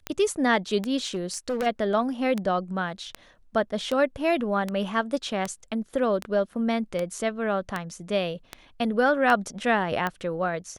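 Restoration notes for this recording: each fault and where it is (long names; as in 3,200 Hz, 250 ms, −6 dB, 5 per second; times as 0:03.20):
scratch tick 78 rpm −14 dBFS
0:01.04–0:01.67: clipping −23 dBFS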